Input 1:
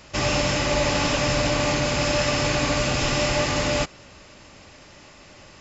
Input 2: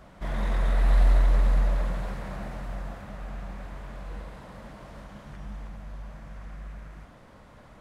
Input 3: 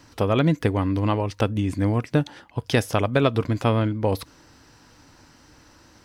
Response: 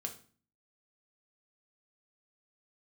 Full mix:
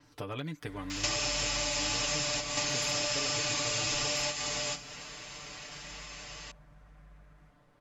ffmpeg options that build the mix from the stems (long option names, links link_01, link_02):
-filter_complex "[0:a]acompressor=threshold=-28dB:ratio=6,tiltshelf=frequency=810:gain=-7,adelay=900,volume=2dB,asplit=2[link_01][link_02];[link_02]volume=-6dB[link_03];[1:a]adelay=450,volume=-15dB[link_04];[2:a]volume=-12.5dB,asplit=2[link_05][link_06];[link_06]apad=whole_len=287031[link_07];[link_01][link_07]sidechaingate=range=-17dB:threshold=-52dB:ratio=16:detection=peak[link_08];[3:a]atrim=start_sample=2205[link_09];[link_03][link_09]afir=irnorm=-1:irlink=0[link_10];[link_08][link_04][link_05][link_10]amix=inputs=4:normalize=0,aecho=1:1:6.8:0.82,acrossover=split=1200|3200[link_11][link_12][link_13];[link_11]acompressor=threshold=-38dB:ratio=4[link_14];[link_12]acompressor=threshold=-43dB:ratio=4[link_15];[link_13]acompressor=threshold=-34dB:ratio=4[link_16];[link_14][link_15][link_16]amix=inputs=3:normalize=0,adynamicequalizer=threshold=0.00501:dfrequency=7100:dqfactor=0.7:tfrequency=7100:tqfactor=0.7:attack=5:release=100:ratio=0.375:range=2:mode=boostabove:tftype=highshelf"